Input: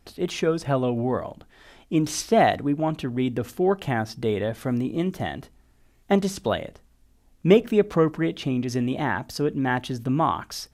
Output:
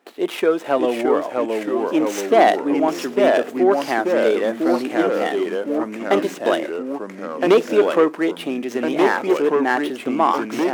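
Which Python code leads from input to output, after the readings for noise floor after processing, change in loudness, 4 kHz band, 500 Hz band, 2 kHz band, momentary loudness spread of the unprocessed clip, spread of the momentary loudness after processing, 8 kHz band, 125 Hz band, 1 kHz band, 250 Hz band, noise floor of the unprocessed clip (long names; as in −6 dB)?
−36 dBFS, +5.0 dB, +3.5 dB, +7.5 dB, +7.0 dB, 9 LU, 8 LU, −0.5 dB, −12.5 dB, +6.5 dB, +4.0 dB, −60 dBFS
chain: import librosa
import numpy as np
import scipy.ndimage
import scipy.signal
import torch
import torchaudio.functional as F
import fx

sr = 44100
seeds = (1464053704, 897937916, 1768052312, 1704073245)

p1 = scipy.ndimage.median_filter(x, 9, mode='constant')
p2 = fx.fold_sine(p1, sr, drive_db=8, ceiling_db=-4.0)
p3 = p1 + (p2 * 10.0 ** (-7.5 / 20.0))
p4 = fx.echo_pitch(p3, sr, ms=566, semitones=-2, count=3, db_per_echo=-3.0)
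p5 = scipy.signal.sosfilt(scipy.signal.butter(4, 300.0, 'highpass', fs=sr, output='sos'), p4)
y = p5 * 10.0 ** (-1.5 / 20.0)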